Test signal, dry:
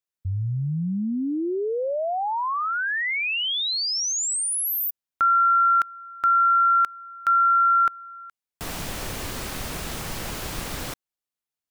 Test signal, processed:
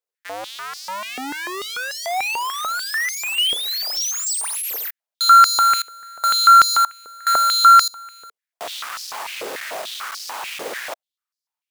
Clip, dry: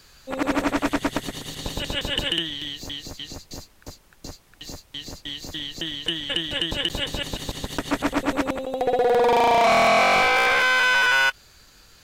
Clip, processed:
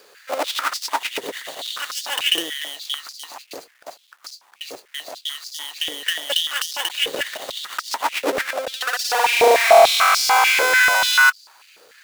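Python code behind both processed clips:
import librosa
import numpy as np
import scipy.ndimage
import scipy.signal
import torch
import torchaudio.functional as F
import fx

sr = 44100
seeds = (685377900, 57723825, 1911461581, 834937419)

y = fx.halfwave_hold(x, sr)
y = fx.filter_held_highpass(y, sr, hz=6.8, low_hz=460.0, high_hz=4900.0)
y = F.gain(torch.from_numpy(y), -3.0).numpy()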